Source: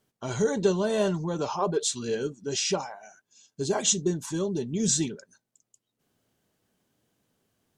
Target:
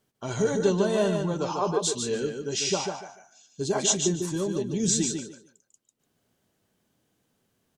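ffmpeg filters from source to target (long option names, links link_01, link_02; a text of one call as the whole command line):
ffmpeg -i in.wav -af "aecho=1:1:147|294|441:0.531|0.106|0.0212" out.wav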